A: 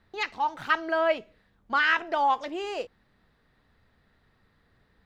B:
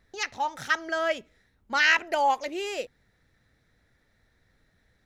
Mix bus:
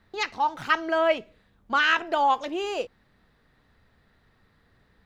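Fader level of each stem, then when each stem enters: +2.5, -10.5 dB; 0.00, 0.00 s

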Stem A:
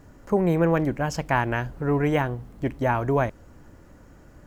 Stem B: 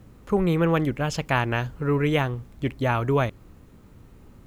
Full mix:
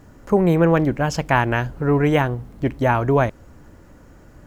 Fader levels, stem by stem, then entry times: +3.0, -7.5 dB; 0.00, 0.00 s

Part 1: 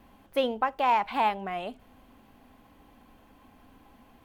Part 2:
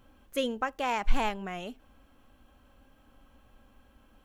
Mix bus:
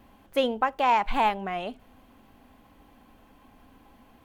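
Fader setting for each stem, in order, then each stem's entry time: +0.5, -8.5 dB; 0.00, 0.00 s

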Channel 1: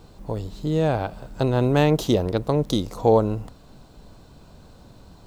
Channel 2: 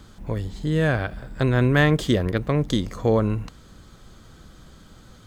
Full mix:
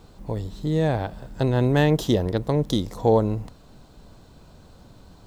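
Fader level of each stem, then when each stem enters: -1.5, -13.5 dB; 0.00, 0.00 s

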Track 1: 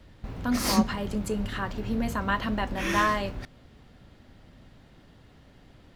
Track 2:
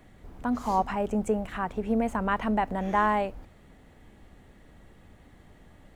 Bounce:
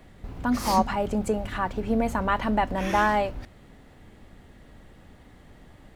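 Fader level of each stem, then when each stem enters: -4.5, +2.5 dB; 0.00, 0.00 s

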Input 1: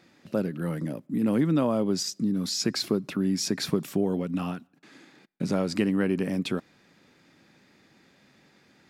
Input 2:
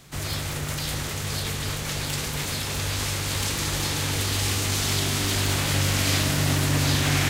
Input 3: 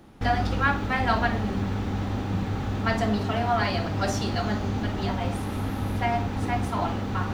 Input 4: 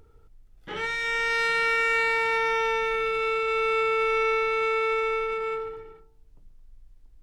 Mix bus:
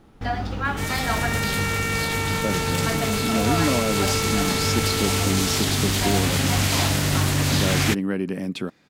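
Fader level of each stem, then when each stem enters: 0.0, +1.0, -2.5, -4.0 dB; 2.10, 0.65, 0.00, 0.00 s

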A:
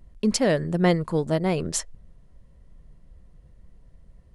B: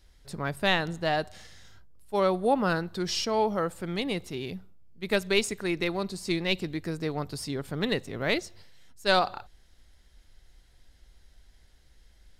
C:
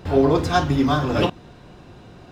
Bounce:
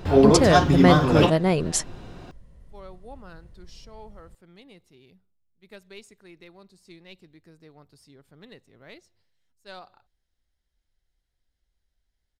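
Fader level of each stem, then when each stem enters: +2.5, -20.0, +1.0 dB; 0.00, 0.60, 0.00 s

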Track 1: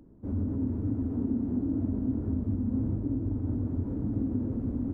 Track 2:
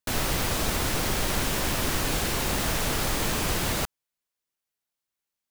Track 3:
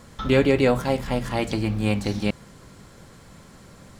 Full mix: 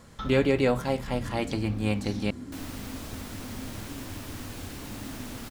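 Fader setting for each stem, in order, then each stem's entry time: -11.0, -15.0, -4.5 dB; 0.85, 2.45, 0.00 s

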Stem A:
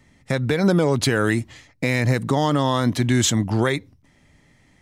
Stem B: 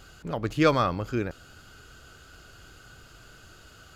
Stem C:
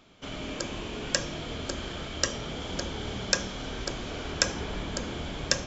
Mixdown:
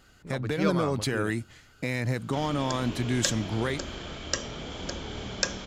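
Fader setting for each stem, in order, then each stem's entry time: -9.0, -8.0, -2.0 dB; 0.00, 0.00, 2.10 s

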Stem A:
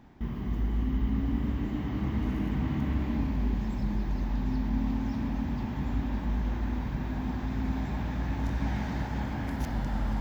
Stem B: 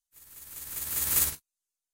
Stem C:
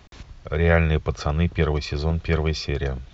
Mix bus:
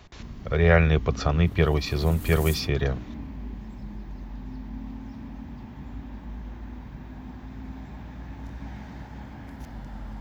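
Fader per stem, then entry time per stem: -8.0, -13.0, 0.0 dB; 0.00, 1.30, 0.00 s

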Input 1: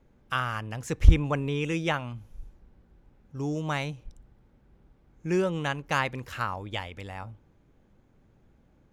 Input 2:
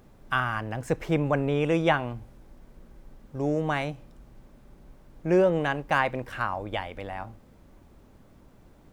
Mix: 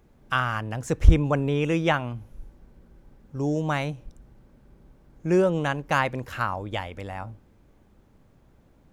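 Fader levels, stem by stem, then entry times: +1.0, -7.0 dB; 0.00, 0.00 s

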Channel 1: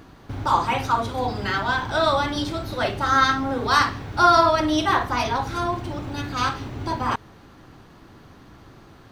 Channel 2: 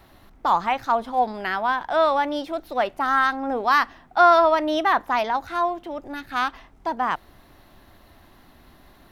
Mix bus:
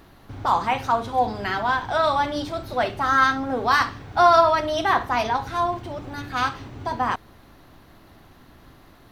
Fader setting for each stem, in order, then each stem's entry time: -5.5, -1.5 dB; 0.00, 0.00 s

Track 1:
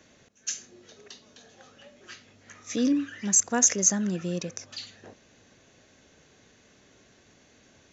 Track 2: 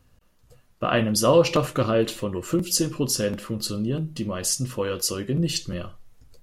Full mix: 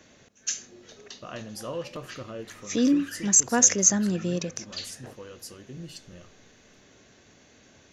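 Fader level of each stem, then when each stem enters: +2.5, -17.0 dB; 0.00, 0.40 s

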